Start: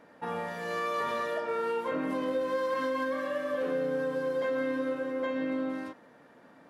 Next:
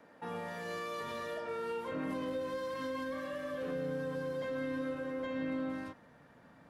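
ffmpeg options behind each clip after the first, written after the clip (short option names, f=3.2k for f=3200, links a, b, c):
-filter_complex "[0:a]asubboost=boost=6:cutoff=130,acrossover=split=290|420|2600[a][b][c][d];[c]alimiter=level_in=10dB:limit=-24dB:level=0:latency=1,volume=-10dB[e];[a][b][e][d]amix=inputs=4:normalize=0,volume=-3dB"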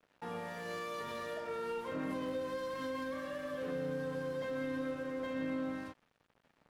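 -af "aeval=exprs='sgn(val(0))*max(abs(val(0))-0.00158,0)':c=same"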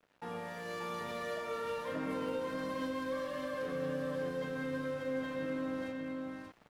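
-af "aecho=1:1:584:0.668,areverse,acompressor=mode=upward:threshold=-53dB:ratio=2.5,areverse"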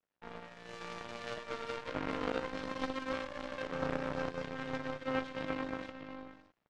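-af "lowpass=f=7k:w=0.5412,lowpass=f=7k:w=1.3066,aeval=exprs='0.0501*(cos(1*acos(clip(val(0)/0.0501,-1,1)))-cos(1*PI/2))+0.0158*(cos(3*acos(clip(val(0)/0.0501,-1,1)))-cos(3*PI/2))+0.00112*(cos(6*acos(clip(val(0)/0.0501,-1,1)))-cos(6*PI/2))':c=same,volume=7dB"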